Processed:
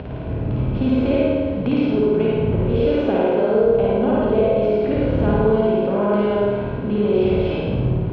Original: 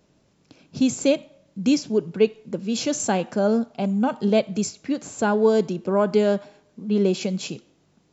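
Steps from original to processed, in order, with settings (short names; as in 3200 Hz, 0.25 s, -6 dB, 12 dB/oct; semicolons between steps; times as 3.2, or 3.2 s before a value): per-bin compression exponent 0.6; wind noise 170 Hz -26 dBFS; 2.58–5.05 bell 490 Hz +8 dB 0.71 oct; reverb RT60 0.40 s, pre-delay 63 ms, DRR -2 dB; upward compressor, threshold -29 dBFS; steep low-pass 3300 Hz 36 dB/oct; compressor 2.5:1, threshold -23 dBFS, peak gain reduction 12.5 dB; HPF 57 Hz; bell 1800 Hz -3 dB 2.9 oct; flutter echo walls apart 9.3 m, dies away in 1.3 s; gain +1.5 dB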